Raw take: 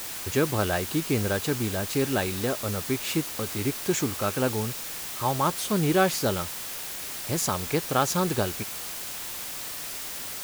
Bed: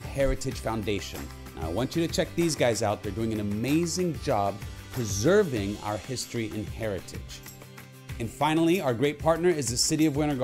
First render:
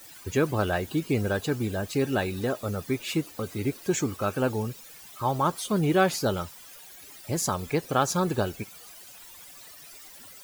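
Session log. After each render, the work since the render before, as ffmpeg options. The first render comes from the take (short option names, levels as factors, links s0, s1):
-af "afftdn=nr=16:nf=-36"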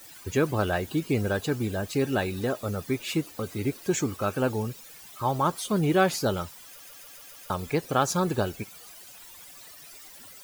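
-filter_complex "[0:a]asplit=7[s0][s1][s2][s3][s4][s5][s6];[s0]atrim=end=6.802[s7];[s1]atrim=start=6.658:end=6.802[s8];[s2]atrim=start=6.658:end=6.802[s9];[s3]atrim=start=6.658:end=6.802[s10];[s4]atrim=start=6.658:end=6.802[s11];[s5]atrim=start=6.658:end=6.802[s12];[s6]atrim=start=7.498[s13];[s7][s8]acrossfade=d=0.004:c1=hsin:c2=hsin[s14];[s14][s9]acrossfade=d=0.004:c1=hsin:c2=hsin[s15];[s15][s10]acrossfade=d=0.004:c1=hsin:c2=hsin[s16];[s16][s11]acrossfade=d=0.004:c1=hsin:c2=hsin[s17];[s17][s12]acrossfade=d=0.004:c1=hsin:c2=hsin[s18];[s18][s13]acrossfade=d=0.004:c1=hsin:c2=hsin"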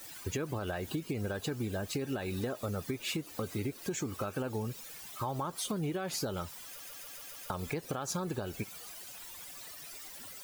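-af "alimiter=limit=0.1:level=0:latency=1:release=149,acompressor=threshold=0.0251:ratio=6"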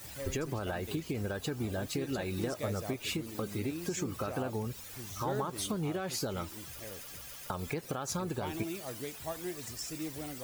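-filter_complex "[1:a]volume=0.15[s0];[0:a][s0]amix=inputs=2:normalize=0"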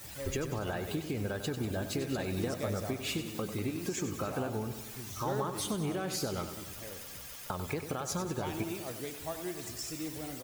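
-af "aecho=1:1:96|192|288|384|480|576|672:0.316|0.19|0.114|0.0683|0.041|0.0246|0.0148"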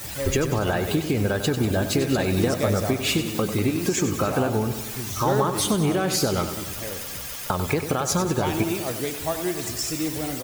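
-af "volume=3.98"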